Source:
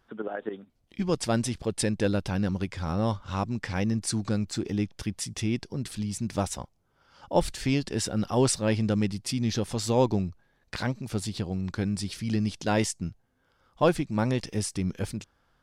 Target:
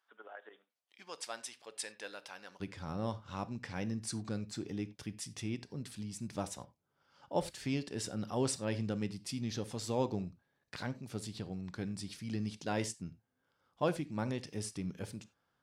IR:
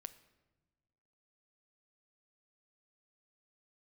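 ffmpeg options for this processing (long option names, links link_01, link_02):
-filter_complex "[0:a]asetnsamples=nb_out_samples=441:pad=0,asendcmd='2.6 highpass f 100',highpass=890[link_01];[1:a]atrim=start_sample=2205,afade=type=out:start_time=0.15:duration=0.01,atrim=end_sample=7056[link_02];[link_01][link_02]afir=irnorm=-1:irlink=0,volume=-4.5dB"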